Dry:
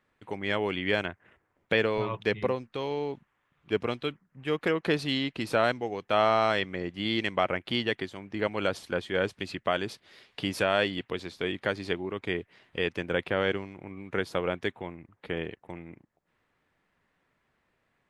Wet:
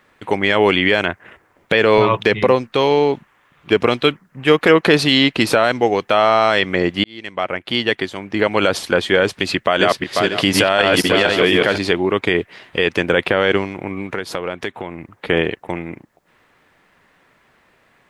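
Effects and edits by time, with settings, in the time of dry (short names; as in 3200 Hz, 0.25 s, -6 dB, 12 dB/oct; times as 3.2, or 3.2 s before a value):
7.04–8.83 fade in
9.55–11.78 regenerating reverse delay 0.246 s, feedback 41%, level -2 dB
14.06–15.27 compressor 3:1, threshold -41 dBFS
whole clip: low shelf 220 Hz -6.5 dB; maximiser +19.5 dB; gain -1 dB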